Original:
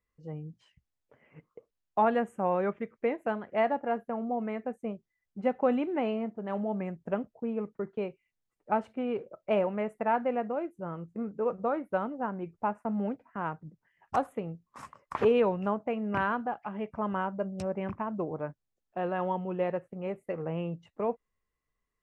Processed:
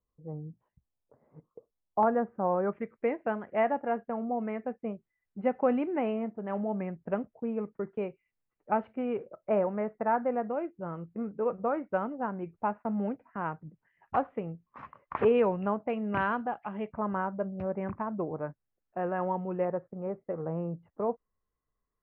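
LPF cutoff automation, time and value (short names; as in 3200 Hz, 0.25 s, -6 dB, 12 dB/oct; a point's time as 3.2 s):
LPF 24 dB/oct
1100 Hz
from 2.03 s 1500 Hz
from 2.73 s 2600 Hz
from 9.35 s 1900 Hz
from 10.49 s 2700 Hz
from 15.9 s 3600 Hz
from 16.92 s 2100 Hz
from 19.65 s 1500 Hz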